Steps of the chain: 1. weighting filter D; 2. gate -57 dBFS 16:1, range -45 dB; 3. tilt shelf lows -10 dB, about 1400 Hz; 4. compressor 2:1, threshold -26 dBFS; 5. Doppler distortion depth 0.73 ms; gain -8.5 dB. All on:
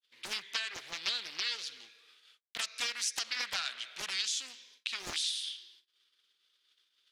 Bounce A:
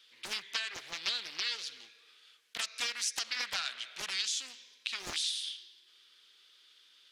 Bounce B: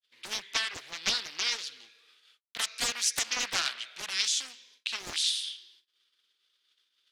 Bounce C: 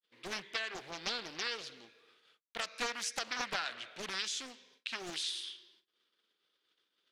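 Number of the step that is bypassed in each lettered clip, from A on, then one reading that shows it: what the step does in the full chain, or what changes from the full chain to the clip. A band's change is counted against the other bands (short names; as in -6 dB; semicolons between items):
2, momentary loudness spread change +1 LU; 4, loudness change +5.0 LU; 3, 8 kHz band -9.0 dB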